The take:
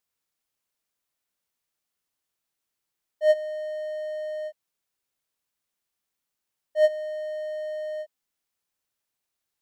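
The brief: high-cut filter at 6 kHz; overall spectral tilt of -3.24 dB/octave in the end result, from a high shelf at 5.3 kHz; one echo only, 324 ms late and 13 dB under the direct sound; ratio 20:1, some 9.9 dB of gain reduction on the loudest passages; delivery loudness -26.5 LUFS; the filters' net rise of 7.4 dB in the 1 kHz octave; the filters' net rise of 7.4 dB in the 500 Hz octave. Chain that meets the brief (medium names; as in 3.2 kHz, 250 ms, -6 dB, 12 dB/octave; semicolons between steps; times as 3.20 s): low-pass 6 kHz; peaking EQ 500 Hz +6 dB; peaking EQ 1 kHz +8.5 dB; treble shelf 5.3 kHz +6.5 dB; compression 20:1, threshold -17 dBFS; delay 324 ms -13 dB; trim -1 dB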